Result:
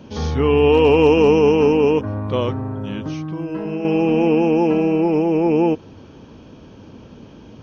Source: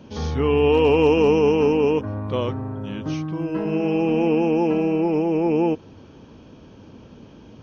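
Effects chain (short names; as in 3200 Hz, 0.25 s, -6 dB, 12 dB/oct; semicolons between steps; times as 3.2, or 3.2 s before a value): 2.99–3.85 compressor 2.5:1, threshold -28 dBFS, peak gain reduction 6.5 dB; gain +3.5 dB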